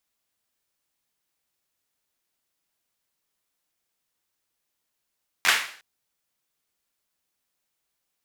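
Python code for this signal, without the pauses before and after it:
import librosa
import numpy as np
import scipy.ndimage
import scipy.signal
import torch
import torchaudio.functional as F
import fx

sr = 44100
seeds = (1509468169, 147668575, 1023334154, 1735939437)

y = fx.drum_clap(sr, seeds[0], length_s=0.36, bursts=4, spacing_ms=11, hz=1900.0, decay_s=0.49)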